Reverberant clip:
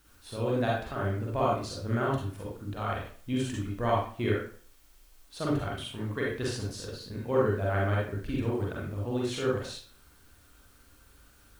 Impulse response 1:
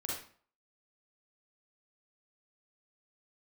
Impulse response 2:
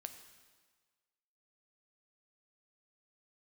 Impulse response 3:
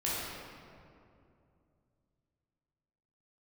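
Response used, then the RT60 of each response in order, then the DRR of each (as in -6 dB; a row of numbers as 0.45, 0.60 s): 1; 0.45, 1.5, 2.6 s; -4.5, 7.0, -8.5 dB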